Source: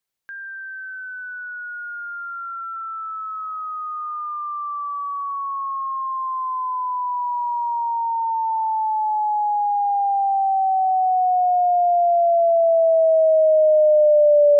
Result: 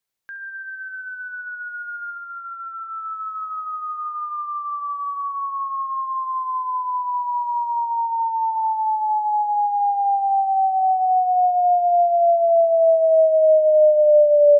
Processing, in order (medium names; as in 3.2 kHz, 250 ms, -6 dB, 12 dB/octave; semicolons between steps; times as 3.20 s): 2.15–2.87 s: low-pass 1.3 kHz -> 1.5 kHz 12 dB/octave; on a send: feedback delay 70 ms, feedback 57%, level -13 dB